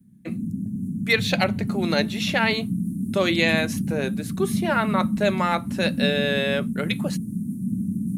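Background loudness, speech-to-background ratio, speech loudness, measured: −27.5 LKFS, 3.0 dB, −24.5 LKFS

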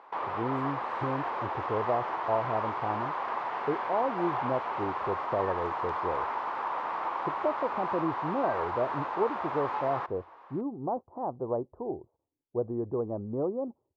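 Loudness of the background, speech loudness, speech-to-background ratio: −33.5 LKFS, −34.0 LKFS, −0.5 dB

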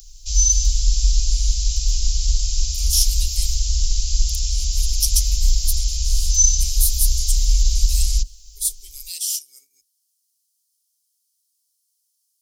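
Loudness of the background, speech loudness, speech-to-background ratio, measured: −20.5 LKFS, −24.5 LKFS, −4.0 dB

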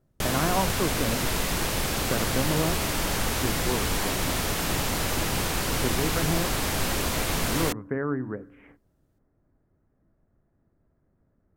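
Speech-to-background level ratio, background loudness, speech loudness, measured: −5.0 dB, −26.5 LKFS, −31.5 LKFS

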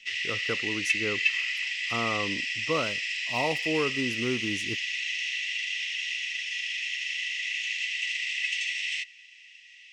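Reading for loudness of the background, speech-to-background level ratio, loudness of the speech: −28.5 LKFS, −5.0 dB, −33.5 LKFS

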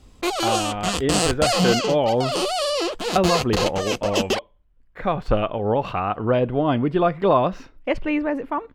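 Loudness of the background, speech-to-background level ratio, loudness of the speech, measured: −23.5 LKFS, 0.5 dB, −23.0 LKFS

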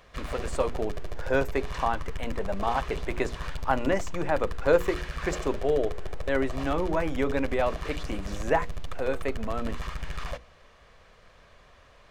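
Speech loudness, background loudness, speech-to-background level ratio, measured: −30.0 LKFS, −38.5 LKFS, 8.5 dB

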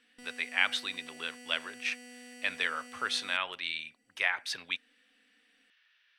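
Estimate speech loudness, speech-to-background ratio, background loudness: −33.0 LKFS, 16.5 dB, −49.5 LKFS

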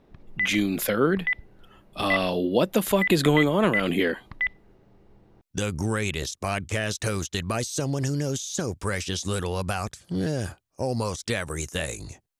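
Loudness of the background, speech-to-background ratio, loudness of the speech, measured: −29.0 LKFS, 2.5 dB, −26.5 LKFS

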